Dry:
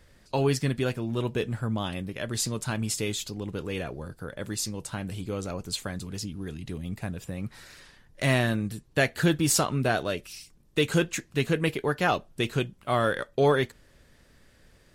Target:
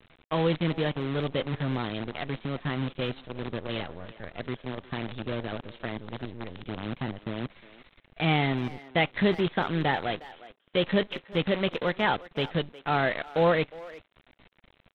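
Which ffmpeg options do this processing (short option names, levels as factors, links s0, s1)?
-filter_complex "[0:a]asetrate=52444,aresample=44100,atempo=0.840896,aresample=8000,acrusher=bits=6:dc=4:mix=0:aa=0.000001,aresample=44100,asplit=2[s0][s1];[s1]adelay=360,highpass=300,lowpass=3400,asoftclip=type=hard:threshold=0.106,volume=0.141[s2];[s0][s2]amix=inputs=2:normalize=0,volume=0.891"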